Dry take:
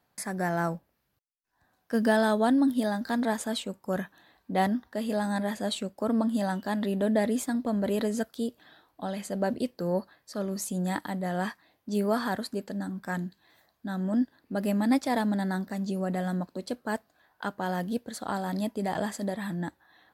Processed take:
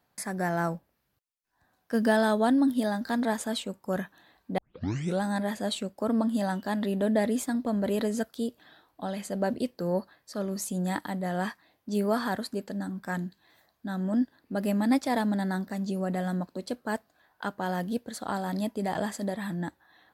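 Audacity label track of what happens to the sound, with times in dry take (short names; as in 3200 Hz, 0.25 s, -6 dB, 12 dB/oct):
4.580000	4.580000	tape start 0.65 s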